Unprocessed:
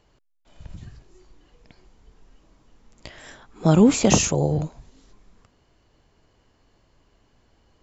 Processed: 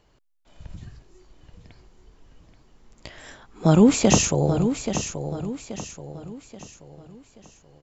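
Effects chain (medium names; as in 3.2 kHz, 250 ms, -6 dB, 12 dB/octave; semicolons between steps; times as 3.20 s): feedback delay 830 ms, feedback 40%, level -9 dB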